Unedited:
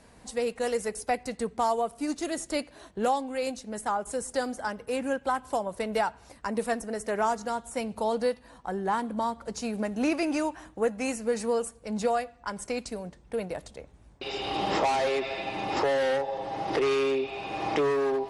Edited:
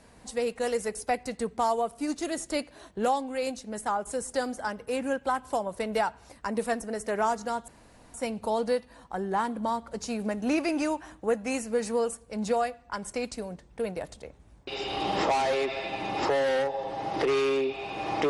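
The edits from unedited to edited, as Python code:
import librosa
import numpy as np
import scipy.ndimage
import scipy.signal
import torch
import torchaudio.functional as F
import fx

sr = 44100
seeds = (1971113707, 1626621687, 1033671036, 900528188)

y = fx.edit(x, sr, fx.insert_room_tone(at_s=7.68, length_s=0.46), tone=tone)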